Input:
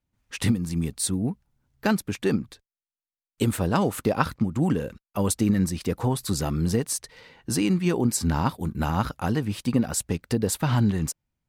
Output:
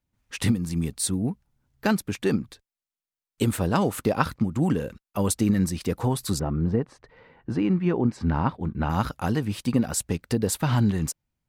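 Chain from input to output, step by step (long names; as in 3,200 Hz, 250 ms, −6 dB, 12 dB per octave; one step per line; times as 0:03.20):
0:06.38–0:08.89: low-pass filter 1,200 Hz → 2,600 Hz 12 dB per octave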